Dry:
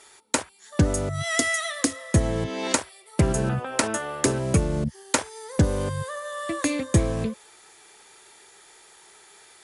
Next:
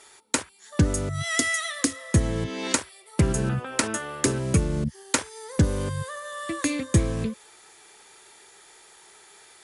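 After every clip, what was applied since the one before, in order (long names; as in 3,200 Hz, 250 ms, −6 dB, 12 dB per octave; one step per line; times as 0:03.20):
dynamic equaliser 700 Hz, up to −7 dB, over −42 dBFS, Q 1.5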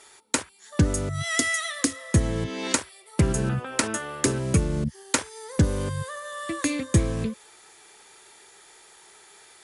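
no processing that can be heard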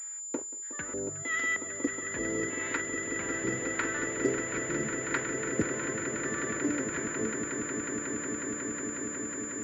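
auto-filter band-pass square 1.6 Hz 380–1,700 Hz
echo that builds up and dies away 182 ms, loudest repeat 8, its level −10 dB
switching amplifier with a slow clock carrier 7,100 Hz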